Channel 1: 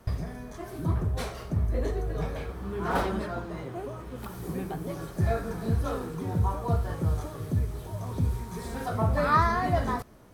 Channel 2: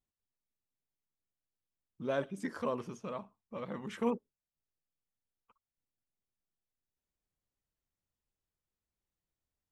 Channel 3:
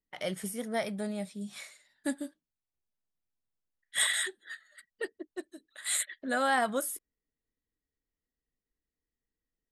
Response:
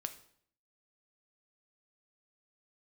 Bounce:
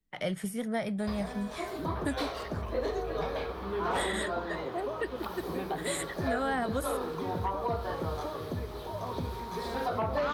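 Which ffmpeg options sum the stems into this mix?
-filter_complex "[0:a]equalizer=frequency=125:width_type=o:width=1:gain=-10,equalizer=frequency=500:width_type=o:width=1:gain=5,equalizer=frequency=1000:width_type=o:width=1:gain=6,equalizer=frequency=4000:width_type=o:width=1:gain=10,equalizer=frequency=8000:width_type=o:width=1:gain=-10,aeval=exprs='0.562*sin(PI/2*3.16*val(0)/0.562)':channel_layout=same,highpass=59,adelay=1000,volume=-14.5dB[link_01];[1:a]highpass=1400,volume=-2dB[link_02];[2:a]bass=frequency=250:gain=9,treble=frequency=4000:gain=-7,volume=2dB,asplit=2[link_03][link_04];[link_04]volume=-17.5dB[link_05];[3:a]atrim=start_sample=2205[link_06];[link_05][link_06]afir=irnorm=-1:irlink=0[link_07];[link_01][link_02][link_03][link_07]amix=inputs=4:normalize=0,acrossover=split=93|550[link_08][link_09][link_10];[link_08]acompressor=threshold=-42dB:ratio=4[link_11];[link_09]acompressor=threshold=-33dB:ratio=4[link_12];[link_10]acompressor=threshold=-32dB:ratio=4[link_13];[link_11][link_12][link_13]amix=inputs=3:normalize=0"

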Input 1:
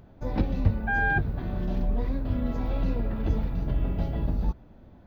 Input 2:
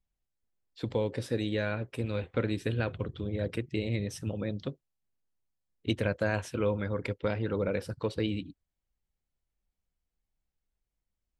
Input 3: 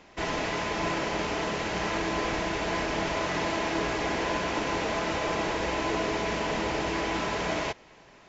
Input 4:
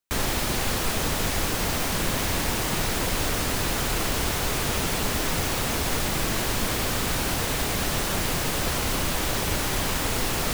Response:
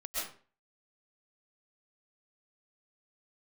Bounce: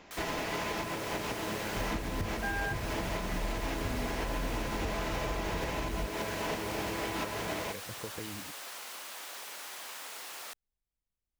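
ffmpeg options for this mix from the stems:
-filter_complex "[0:a]adelay=1550,volume=-5.5dB[link_01];[1:a]acompressor=threshold=-33dB:ratio=6,volume=-6dB,asplit=2[link_02][link_03];[2:a]volume=-1dB[link_04];[3:a]highpass=740,volume=-15dB[link_05];[link_03]apad=whole_len=365331[link_06];[link_04][link_06]sidechaincompress=threshold=-44dB:ratio=8:attack=26:release=258[link_07];[link_01][link_02][link_07][link_05]amix=inputs=4:normalize=0,alimiter=limit=-24dB:level=0:latency=1:release=249"

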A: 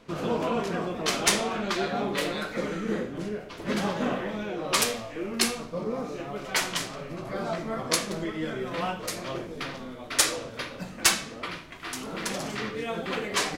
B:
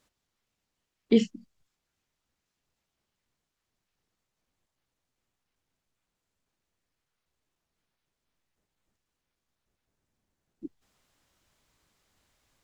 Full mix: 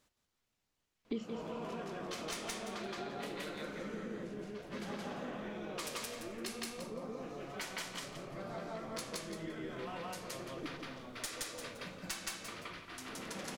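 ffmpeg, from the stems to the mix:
ffmpeg -i stem1.wav -i stem2.wav -filter_complex "[0:a]aeval=exprs='clip(val(0),-1,0.119)':channel_layout=same,adelay=1050,volume=-7dB,asplit=2[link_01][link_02];[link_02]volume=-5dB[link_03];[1:a]volume=-2dB,asplit=3[link_04][link_05][link_06];[link_05]volume=-9.5dB[link_07];[link_06]apad=whole_len=644797[link_08];[link_01][link_08]sidechaingate=range=-6dB:threshold=-51dB:ratio=16:detection=peak[link_09];[link_03][link_07]amix=inputs=2:normalize=0,aecho=0:1:171|342|513:1|0.21|0.0441[link_10];[link_09][link_04][link_10]amix=inputs=3:normalize=0,acompressor=threshold=-39dB:ratio=4" out.wav

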